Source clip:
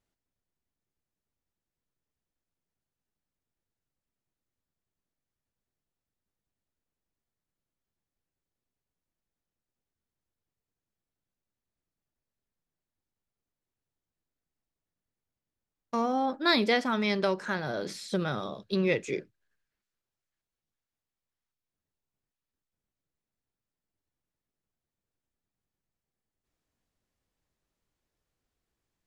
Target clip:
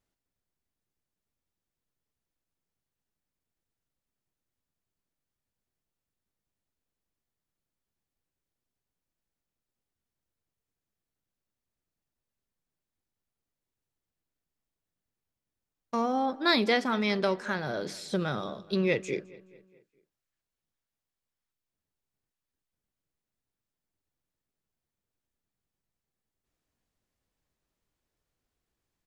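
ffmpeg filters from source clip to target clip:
ffmpeg -i in.wav -filter_complex "[0:a]asplit=2[link_01][link_02];[link_02]adelay=212,lowpass=frequency=4000:poles=1,volume=-21dB,asplit=2[link_03][link_04];[link_04]adelay=212,lowpass=frequency=4000:poles=1,volume=0.53,asplit=2[link_05][link_06];[link_06]adelay=212,lowpass=frequency=4000:poles=1,volume=0.53,asplit=2[link_07][link_08];[link_08]adelay=212,lowpass=frequency=4000:poles=1,volume=0.53[link_09];[link_01][link_03][link_05][link_07][link_09]amix=inputs=5:normalize=0" out.wav

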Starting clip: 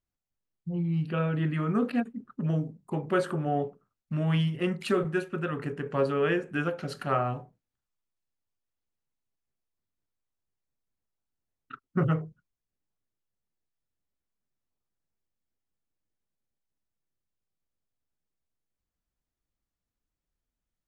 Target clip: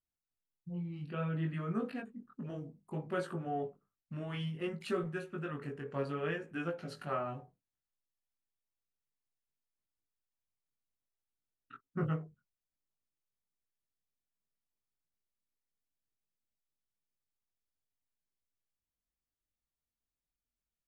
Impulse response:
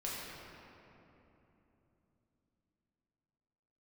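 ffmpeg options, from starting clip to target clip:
-af "flanger=delay=17.5:depth=4.3:speed=0.6,volume=-6dB"

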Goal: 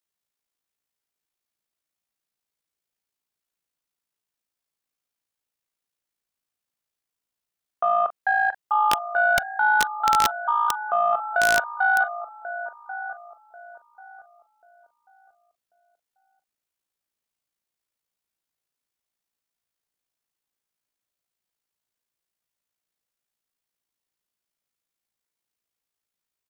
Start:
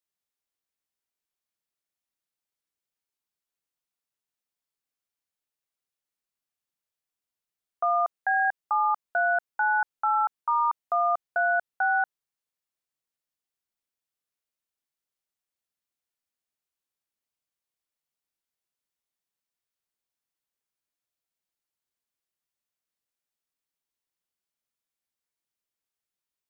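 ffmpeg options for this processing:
ffmpeg -i in.wav -filter_complex "[0:a]tremolo=f=56:d=0.519,asplit=2[link_01][link_02];[link_02]adelay=1089,lowpass=frequency=930:poles=1,volume=-8.5dB,asplit=2[link_03][link_04];[link_04]adelay=1089,lowpass=frequency=930:poles=1,volume=0.35,asplit=2[link_05][link_06];[link_06]adelay=1089,lowpass=frequency=930:poles=1,volume=0.35,asplit=2[link_07][link_08];[link_08]adelay=1089,lowpass=frequency=930:poles=1,volume=0.35[link_09];[link_03][link_05][link_07][link_09]amix=inputs=4:normalize=0[link_10];[link_01][link_10]amix=inputs=2:normalize=0,aeval=exprs='0.178*(cos(1*acos(clip(val(0)/0.178,-1,1)))-cos(1*PI/2))+0.00708*(cos(3*acos(clip(val(0)/0.178,-1,1)))-cos(3*PI/2))':channel_layout=same,asplit=2[link_11][link_12];[link_12]aecho=0:1:27|42:0.158|0.224[link_13];[link_11][link_13]amix=inputs=2:normalize=0,aeval=exprs='(mod(6.68*val(0)+1,2)-1)/6.68':channel_layout=same,volume=6dB" out.wav

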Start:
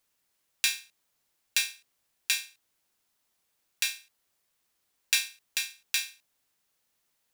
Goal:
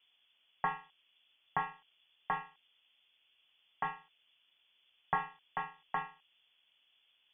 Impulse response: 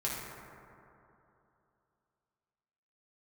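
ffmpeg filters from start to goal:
-filter_complex "[0:a]equalizer=frequency=350:width=1.5:gain=-3.5,acrossover=split=780[link_01][link_02];[link_01]aeval=exprs='0.00447*sin(PI/2*7.94*val(0)/0.00447)':channel_layout=same[link_03];[link_03][link_02]amix=inputs=2:normalize=0,lowpass=frequency=3000:width_type=q:width=0.5098,lowpass=frequency=3000:width_type=q:width=0.6013,lowpass=frequency=3000:width_type=q:width=0.9,lowpass=frequency=3000:width_type=q:width=2.563,afreqshift=-3500,volume=-2dB"

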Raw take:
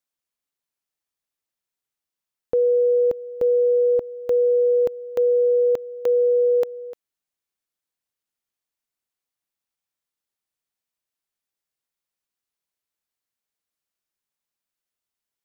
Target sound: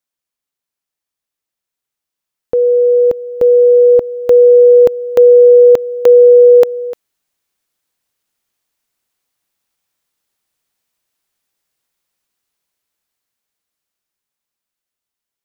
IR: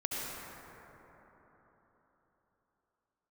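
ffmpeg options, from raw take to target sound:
-af "dynaudnorm=framelen=510:gausssize=13:maxgain=11dB,volume=3dB"

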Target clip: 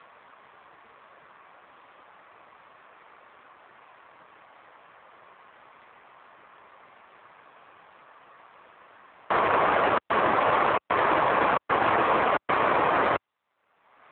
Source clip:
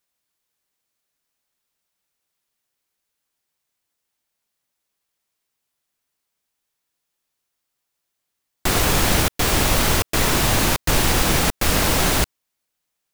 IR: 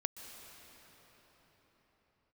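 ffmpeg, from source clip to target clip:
-filter_complex "[0:a]acrossover=split=440 2200:gain=0.1 1 0.0708[link_01][link_02][link_03];[link_01][link_02][link_03]amix=inputs=3:normalize=0,asetrate=41013,aresample=44100,asplit=2[link_04][link_05];[link_05]acrusher=samples=25:mix=1:aa=0.000001,volume=-10dB[link_06];[link_04][link_06]amix=inputs=2:normalize=0,equalizer=frequency=1100:width_type=o:width=0.31:gain=6,acompressor=mode=upward:threshold=-29dB:ratio=2.5,alimiter=limit=-16.5dB:level=0:latency=1:release=28,volume=5.5dB" -ar 8000 -c:a libopencore_amrnb -b:a 7400

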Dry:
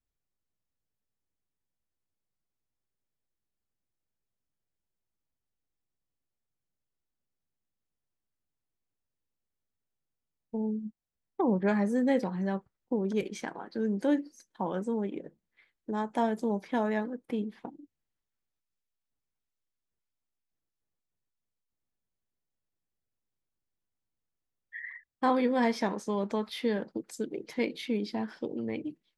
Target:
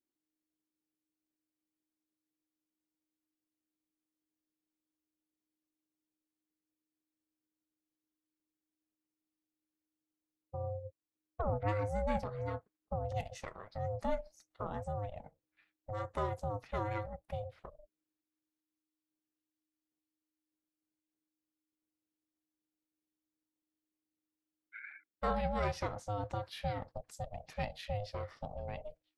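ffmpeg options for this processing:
ffmpeg -i in.wav -af "aeval=exprs='val(0)*sin(2*PI*310*n/s)':channel_layout=same,aeval=exprs='0.178*(cos(1*acos(clip(val(0)/0.178,-1,1)))-cos(1*PI/2))+0.00398*(cos(4*acos(clip(val(0)/0.178,-1,1)))-cos(4*PI/2))':channel_layout=same,volume=-4.5dB" out.wav

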